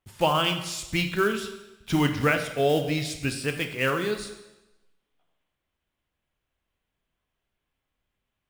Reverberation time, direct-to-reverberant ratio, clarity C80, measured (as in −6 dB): 1.0 s, 6.0 dB, 11.0 dB